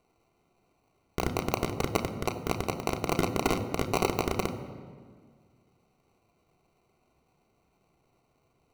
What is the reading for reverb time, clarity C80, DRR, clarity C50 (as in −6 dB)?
1.8 s, 12.0 dB, 2.0 dB, 10.5 dB